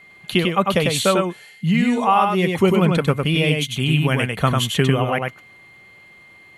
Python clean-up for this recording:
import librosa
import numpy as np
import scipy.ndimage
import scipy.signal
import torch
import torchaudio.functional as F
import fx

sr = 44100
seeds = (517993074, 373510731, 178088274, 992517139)

y = fx.notch(x, sr, hz=2100.0, q=30.0)
y = fx.fix_echo_inverse(y, sr, delay_ms=98, level_db=-3.5)